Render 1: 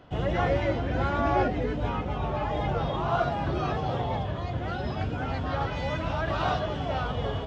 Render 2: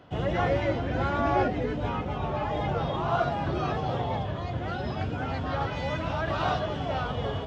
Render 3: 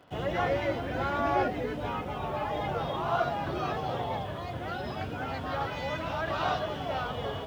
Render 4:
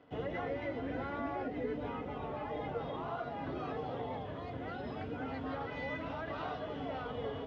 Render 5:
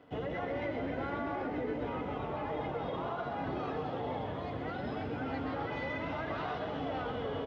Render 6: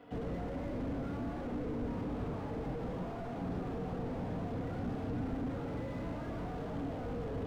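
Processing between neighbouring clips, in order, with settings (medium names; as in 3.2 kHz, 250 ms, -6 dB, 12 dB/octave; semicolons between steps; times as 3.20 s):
high-pass 65 Hz
bass shelf 250 Hz -7.5 dB; in parallel at -11 dB: word length cut 8-bit, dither none; on the sum: trim -3 dB
compression 3:1, threshold -31 dBFS, peak gain reduction 7.5 dB; distance through air 150 m; small resonant body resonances 270/450/2000 Hz, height 10 dB, ringing for 60 ms; trim -6.5 dB
peak limiter -31.5 dBFS, peak gain reduction 5 dB; frequency-shifting echo 127 ms, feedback 62%, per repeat +32 Hz, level -8 dB; trim +3 dB
simulated room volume 500 m³, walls furnished, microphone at 1.8 m; slew-rate limiter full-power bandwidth 4.7 Hz; trim +1 dB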